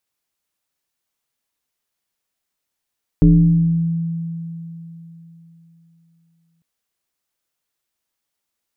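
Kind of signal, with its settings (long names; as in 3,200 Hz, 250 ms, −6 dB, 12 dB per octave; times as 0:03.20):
two-operator FM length 3.40 s, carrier 166 Hz, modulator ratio 0.78, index 1.1, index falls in 1.36 s exponential, decay 3.62 s, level −6 dB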